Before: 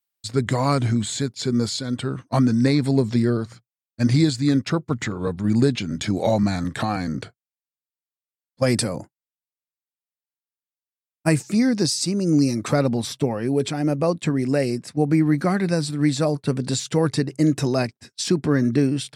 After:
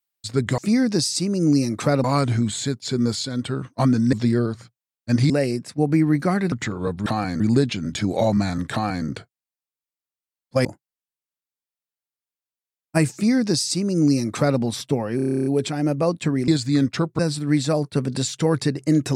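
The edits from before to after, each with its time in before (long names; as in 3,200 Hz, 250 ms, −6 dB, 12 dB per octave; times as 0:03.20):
0:02.67–0:03.04: remove
0:04.21–0:04.92: swap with 0:14.49–0:15.71
0:06.78–0:07.12: duplicate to 0:05.46
0:08.71–0:08.96: remove
0:11.44–0:12.90: duplicate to 0:00.58
0:13.47: stutter 0.03 s, 11 plays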